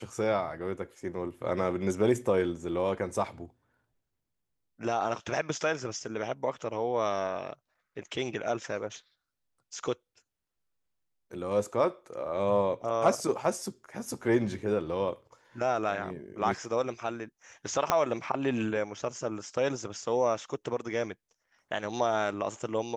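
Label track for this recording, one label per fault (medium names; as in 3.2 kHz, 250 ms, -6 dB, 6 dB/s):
17.900000	17.900000	pop -9 dBFS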